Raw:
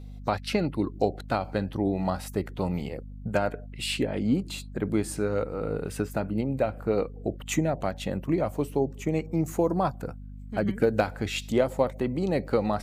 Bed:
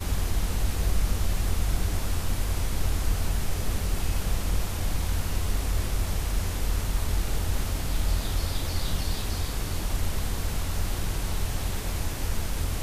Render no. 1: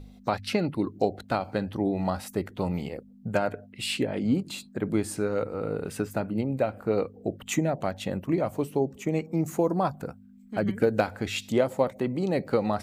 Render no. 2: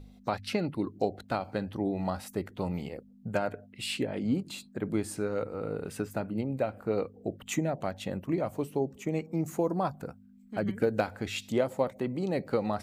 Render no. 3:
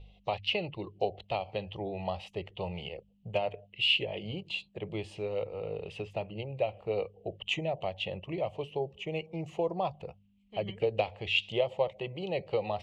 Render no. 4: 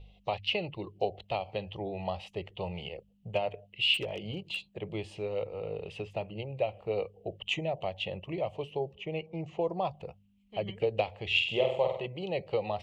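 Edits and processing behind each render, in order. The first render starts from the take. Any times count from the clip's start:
hum removal 50 Hz, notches 3
level −4 dB
low-pass with resonance 2,900 Hz, resonance Q 6.9; phaser with its sweep stopped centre 620 Hz, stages 4
0:03.94–0:04.65: hard clipping −28.5 dBFS; 0:08.94–0:09.61: high-frequency loss of the air 120 metres; 0:11.26–0:12.06: flutter between parallel walls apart 8.2 metres, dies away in 0.61 s

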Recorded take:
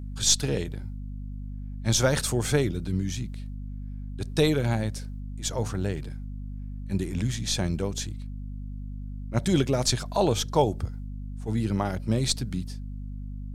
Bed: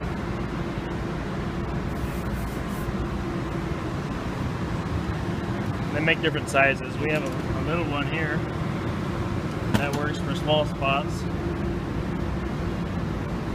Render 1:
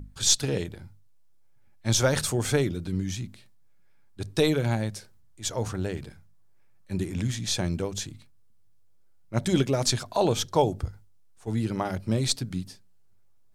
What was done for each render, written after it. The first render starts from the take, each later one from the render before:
mains-hum notches 50/100/150/200/250 Hz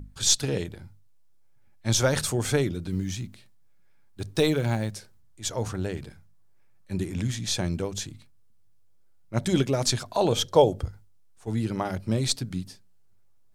0:02.91–0:04.93: one scale factor per block 7 bits
0:10.32–0:10.83: hollow resonant body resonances 520/3,200 Hz, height 9 dB, ringing for 20 ms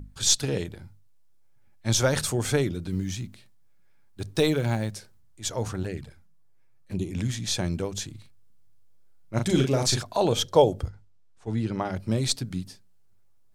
0:05.83–0:07.15: flanger swept by the level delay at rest 9 ms, full sweep at −26 dBFS
0:08.11–0:10.02: double-tracking delay 38 ms −5 dB
0:10.89–0:11.96: high-frequency loss of the air 67 metres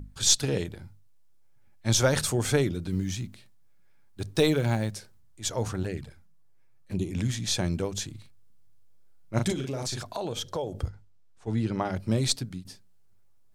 0:09.52–0:10.75: downward compressor 4 to 1, threshold −30 dBFS
0:12.25–0:12.65: fade out equal-power, to −13.5 dB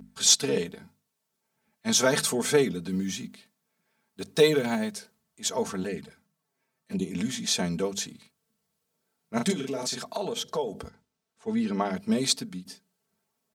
high-pass filter 170 Hz 12 dB per octave
comb filter 4.5 ms, depth 80%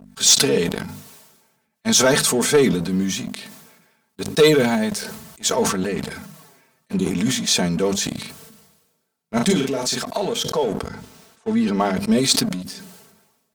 leveller curve on the samples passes 2
level that may fall only so fast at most 49 dB per second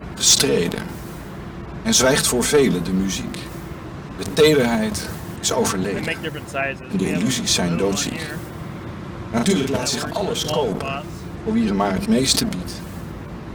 mix in bed −4 dB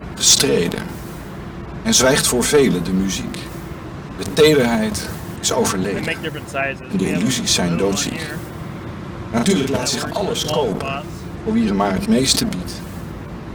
level +2 dB
brickwall limiter −2 dBFS, peak gain reduction 1.5 dB

